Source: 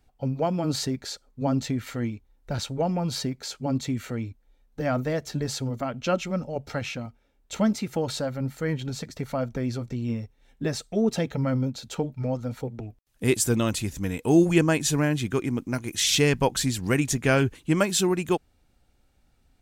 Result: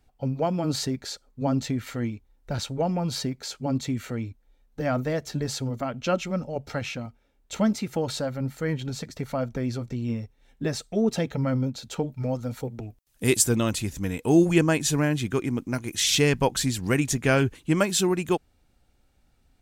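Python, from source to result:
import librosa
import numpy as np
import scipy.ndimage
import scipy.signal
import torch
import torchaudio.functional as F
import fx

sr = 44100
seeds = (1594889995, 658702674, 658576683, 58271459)

y = fx.high_shelf(x, sr, hz=fx.line((12.07, 7600.0), (13.41, 3800.0)), db=7.5, at=(12.07, 13.41), fade=0.02)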